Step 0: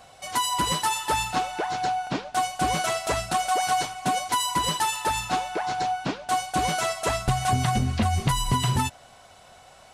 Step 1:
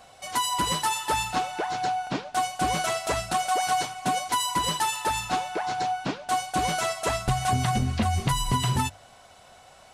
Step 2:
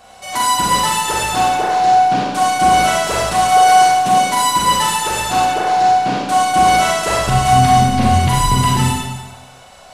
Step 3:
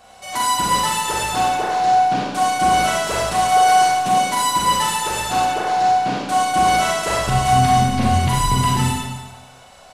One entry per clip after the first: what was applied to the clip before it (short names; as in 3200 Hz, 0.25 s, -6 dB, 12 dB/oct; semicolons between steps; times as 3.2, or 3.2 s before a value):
notches 50/100/150 Hz; gain -1 dB
Schroeder reverb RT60 1.2 s, combs from 31 ms, DRR -4.5 dB; gain +4.5 dB
speakerphone echo 0.25 s, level -17 dB; gain -3.5 dB